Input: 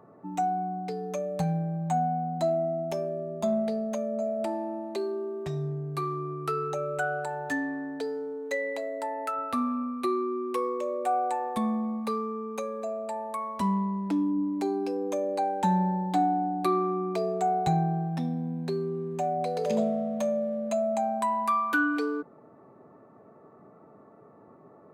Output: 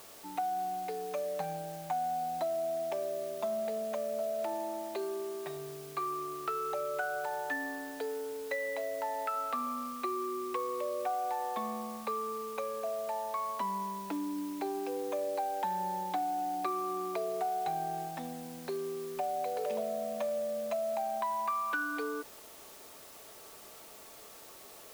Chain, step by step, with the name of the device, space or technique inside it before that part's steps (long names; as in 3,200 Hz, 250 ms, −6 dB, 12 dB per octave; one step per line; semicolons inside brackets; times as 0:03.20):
baby monitor (band-pass filter 470–3,100 Hz; downward compressor, threshold −31 dBFS, peak gain reduction 8.5 dB; white noise bed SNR 17 dB)